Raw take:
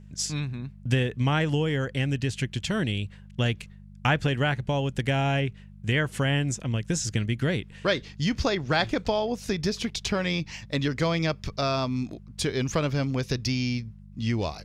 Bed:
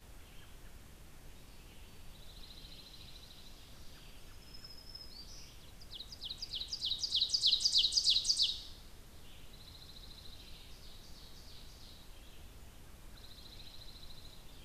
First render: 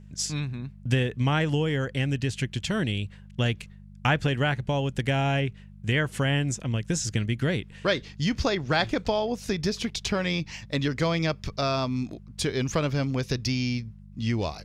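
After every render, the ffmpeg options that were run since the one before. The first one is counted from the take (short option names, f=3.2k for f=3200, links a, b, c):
-af anull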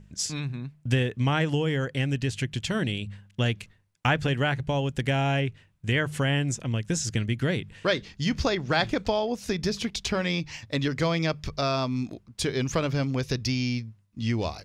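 -af "bandreject=f=50:t=h:w=4,bandreject=f=100:t=h:w=4,bandreject=f=150:t=h:w=4,bandreject=f=200:t=h:w=4"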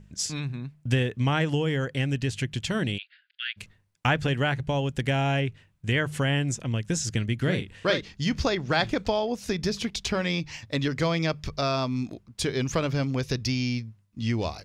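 -filter_complex "[0:a]asplit=3[a][b][c];[a]afade=t=out:st=2.97:d=0.02[d];[b]asuperpass=centerf=2600:order=20:qfactor=0.76,afade=t=in:st=2.97:d=0.02,afade=t=out:st=3.56:d=0.02[e];[c]afade=t=in:st=3.56:d=0.02[f];[d][e][f]amix=inputs=3:normalize=0,asettb=1/sr,asplit=3[g][h][i];[g]atrim=end=7.364[j];[h]atrim=start=7.36:end=8.01,asetpts=PTS-STARTPTS,afade=t=in:d=0.004:c=qsin,afade=t=out:st=0.646:d=0.004:c=qsin,asplit=2[k][l];[l]adelay=43,volume=-7.5dB[m];[k][m]amix=inputs=2:normalize=0,atrim=end_sample=28665[n];[i]atrim=start=8.006[o];[j][n]acrossfade=d=0.004:c1=hsin:c2=qsin[p];[p][o]acrossfade=d=0.004:c1=qsin:c2=hsin"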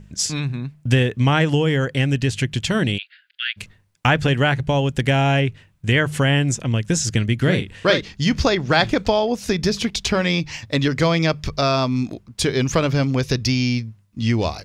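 -af "volume=7.5dB,alimiter=limit=-1dB:level=0:latency=1"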